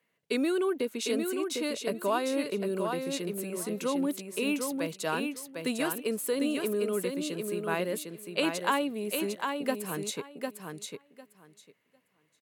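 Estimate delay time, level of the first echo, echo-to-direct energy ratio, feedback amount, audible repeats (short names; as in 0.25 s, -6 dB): 0.752 s, -5.0 dB, -5.0 dB, 16%, 2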